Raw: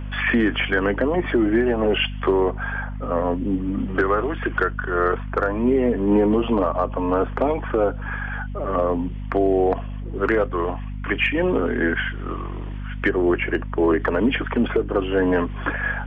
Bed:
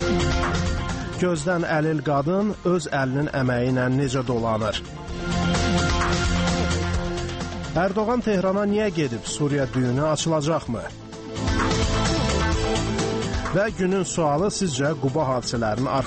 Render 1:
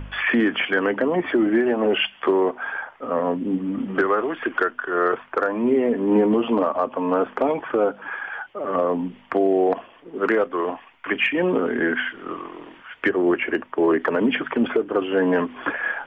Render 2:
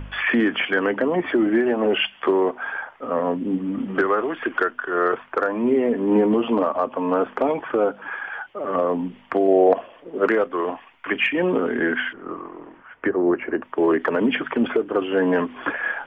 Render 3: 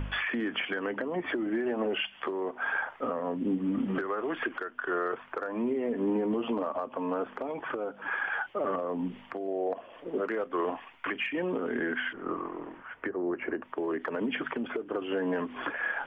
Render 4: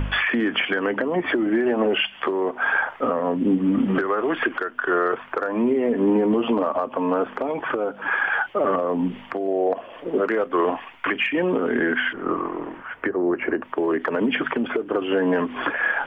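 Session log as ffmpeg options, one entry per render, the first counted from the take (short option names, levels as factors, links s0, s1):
-af "bandreject=f=50:t=h:w=4,bandreject=f=100:t=h:w=4,bandreject=f=150:t=h:w=4,bandreject=f=200:t=h:w=4,bandreject=f=250:t=h:w=4"
-filter_complex "[0:a]asettb=1/sr,asplit=3[s0][s1][s2];[s0]atrim=end=9.484[s3];[s1]atrim=start=9.48:end=10.28,asetpts=PTS-STARTPTS,afade=t=in:d=0.004:c=qsin,afade=t=out:st=0.796:d=0.004:c=qsin,equalizer=f=570:w=2.4:g=9.5[s4];[s2]atrim=start=10.276[s5];[s3][s4]acrossfade=d=0.004:c1=hsin:c2=qsin[s6];[s6][s5]acrossfade=d=0.004:c1=qsin:c2=hsin,asettb=1/sr,asplit=3[s7][s8][s9];[s7]atrim=end=12.134[s10];[s8]atrim=start=12.13:end=13.62,asetpts=PTS-STARTPTS,afade=t=in:d=0.004:c=qsin,afade=t=out:st=1.486:d=0.004:c=qsin,lowpass=1400[s11];[s9]atrim=start=13.616[s12];[s10][s11]acrossfade=d=0.004:c1=hsin:c2=qsin[s13];[s13][s12]acrossfade=d=0.004:c1=qsin:c2=hsin"
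-af "acompressor=threshold=0.0562:ratio=8,alimiter=limit=0.0891:level=0:latency=1:release=464"
-af "volume=2.99"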